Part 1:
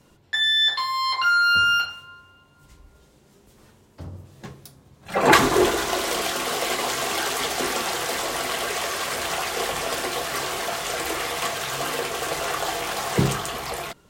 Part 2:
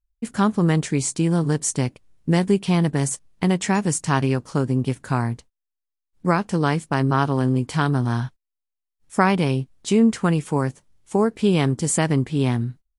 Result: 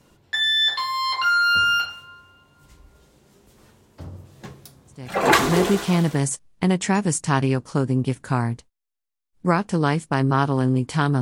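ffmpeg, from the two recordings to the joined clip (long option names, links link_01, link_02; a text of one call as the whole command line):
ffmpeg -i cue0.wav -i cue1.wav -filter_complex "[0:a]apad=whole_dur=11.21,atrim=end=11.21,atrim=end=6.25,asetpts=PTS-STARTPTS[link_01];[1:a]atrim=start=1.67:end=8.01,asetpts=PTS-STARTPTS[link_02];[link_01][link_02]acrossfade=duration=1.38:curve1=qsin:curve2=qsin" out.wav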